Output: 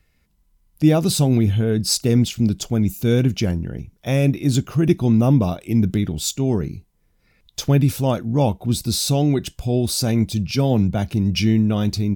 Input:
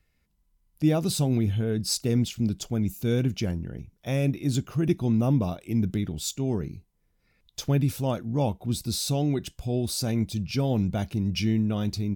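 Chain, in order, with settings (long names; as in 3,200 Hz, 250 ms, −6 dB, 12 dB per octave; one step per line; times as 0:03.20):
0:10.51–0:11.09: multiband upward and downward expander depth 40%
level +7.5 dB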